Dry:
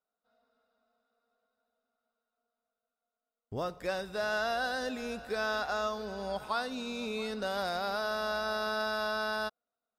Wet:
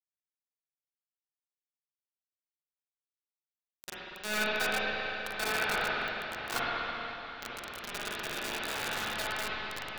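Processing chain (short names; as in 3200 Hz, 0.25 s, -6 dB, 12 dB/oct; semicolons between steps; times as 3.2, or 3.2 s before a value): fifteen-band EQ 100 Hz -12 dB, 250 Hz -6 dB, 1000 Hz -9 dB, 10000 Hz -7 dB; diffused feedback echo 0.952 s, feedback 61%, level -8.5 dB; compressor 3:1, threshold -45 dBFS, peak gain reduction 11 dB; bell 1500 Hz +13 dB 1.5 oct; bit-crush 5-bit; reverb RT60 3.7 s, pre-delay 39 ms, DRR -9 dB; stuck buffer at 5.97, samples 2048, times 1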